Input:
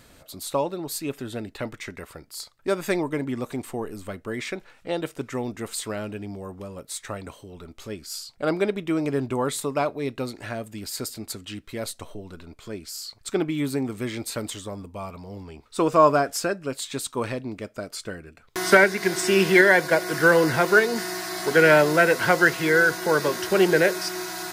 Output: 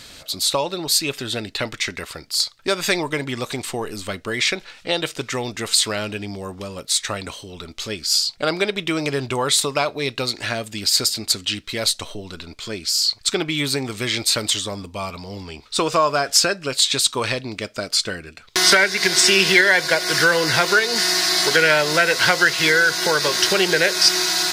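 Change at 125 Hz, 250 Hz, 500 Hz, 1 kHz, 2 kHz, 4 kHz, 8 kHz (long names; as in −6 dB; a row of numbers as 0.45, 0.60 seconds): +1.5, −1.0, −0.5, +2.0, +4.0, +16.0, +12.5 decibels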